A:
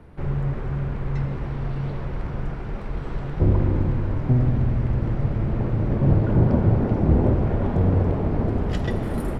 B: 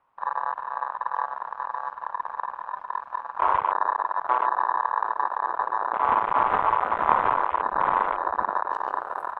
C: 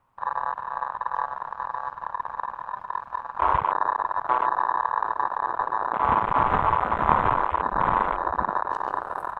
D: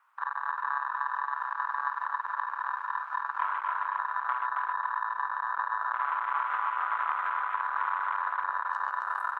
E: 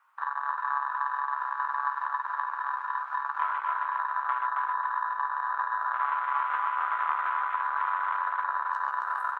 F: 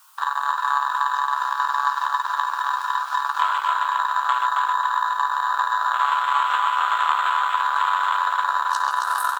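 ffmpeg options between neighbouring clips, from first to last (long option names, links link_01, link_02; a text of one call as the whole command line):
ffmpeg -i in.wav -af "aeval=exprs='0.596*(cos(1*acos(clip(val(0)/0.596,-1,1)))-cos(1*PI/2))+0.211*(cos(4*acos(clip(val(0)/0.596,-1,1)))-cos(4*PI/2))+0.237*(cos(6*acos(clip(val(0)/0.596,-1,1)))-cos(6*PI/2))+0.188*(cos(8*acos(clip(val(0)/0.596,-1,1)))-cos(8*PI/2))':channel_layout=same,aeval=exprs='val(0)*sin(2*PI*1000*n/s)':channel_layout=same,afwtdn=0.0562,volume=-3.5dB" out.wav
ffmpeg -i in.wav -af "bass=frequency=250:gain=14,treble=frequency=4000:gain=6" out.wav
ffmpeg -i in.wav -filter_complex "[0:a]acompressor=threshold=-30dB:ratio=6,highpass=frequency=1400:width_type=q:width=2.9,asplit=2[link_01][link_02];[link_02]aecho=0:1:271|542|813|1084|1355:0.631|0.233|0.0864|0.032|0.0118[link_03];[link_01][link_03]amix=inputs=2:normalize=0" out.wav
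ffmpeg -i in.wav -filter_complex "[0:a]asplit=2[link_01][link_02];[link_02]adelay=14,volume=-7dB[link_03];[link_01][link_03]amix=inputs=2:normalize=0" out.wav
ffmpeg -i in.wav -af "aexciter=amount=10.1:drive=6.6:freq=3200,volume=8dB" out.wav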